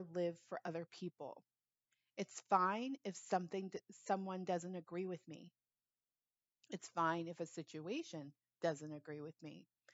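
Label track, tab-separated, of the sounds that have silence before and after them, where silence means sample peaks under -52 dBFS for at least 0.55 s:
2.180000	5.460000	sound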